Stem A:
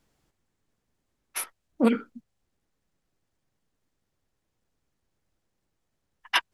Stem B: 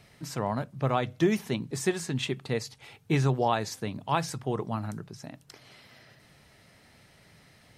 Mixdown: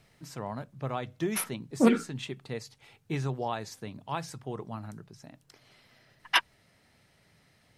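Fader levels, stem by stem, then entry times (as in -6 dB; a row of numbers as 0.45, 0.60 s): 0.0, -7.0 dB; 0.00, 0.00 s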